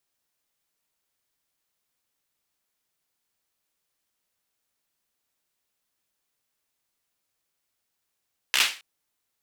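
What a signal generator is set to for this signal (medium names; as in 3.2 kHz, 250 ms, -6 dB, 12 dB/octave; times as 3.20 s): hand clap length 0.27 s, bursts 5, apart 15 ms, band 2.6 kHz, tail 0.34 s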